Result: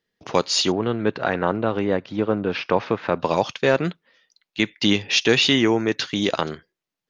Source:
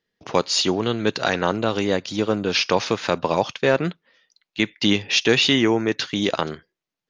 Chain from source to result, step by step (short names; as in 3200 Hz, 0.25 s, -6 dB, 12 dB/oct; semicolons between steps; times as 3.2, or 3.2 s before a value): 0.72–3.2 LPF 1900 Hz 12 dB/oct